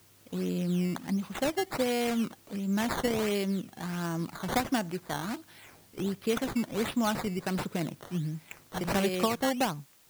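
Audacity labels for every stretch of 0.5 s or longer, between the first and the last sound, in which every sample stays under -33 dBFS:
5.360000	5.980000	silence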